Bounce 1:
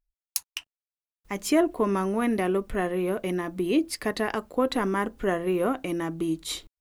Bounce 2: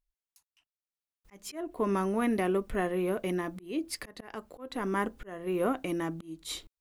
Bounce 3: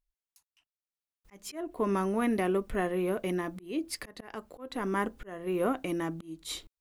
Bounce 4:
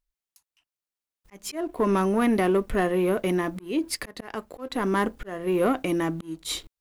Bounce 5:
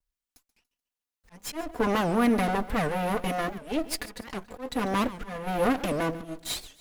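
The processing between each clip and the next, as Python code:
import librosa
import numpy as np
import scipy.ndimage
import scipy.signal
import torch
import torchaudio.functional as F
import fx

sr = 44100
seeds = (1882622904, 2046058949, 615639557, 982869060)

y1 = fx.auto_swell(x, sr, attack_ms=393.0)
y1 = F.gain(torch.from_numpy(y1), -3.0).numpy()
y2 = y1
y3 = fx.leveller(y2, sr, passes=1)
y3 = F.gain(torch.from_numpy(y3), 3.5).numpy()
y4 = fx.lower_of_two(y3, sr, delay_ms=4.1)
y4 = fx.echo_feedback(y4, sr, ms=143, feedback_pct=37, wet_db=-16.5)
y4 = fx.record_warp(y4, sr, rpm=78.0, depth_cents=250.0)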